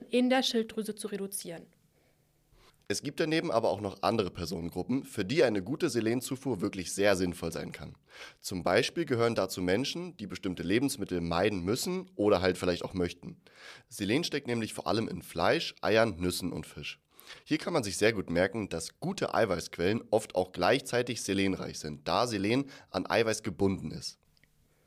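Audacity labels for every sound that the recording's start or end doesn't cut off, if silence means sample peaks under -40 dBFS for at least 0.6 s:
2.900000	24.110000	sound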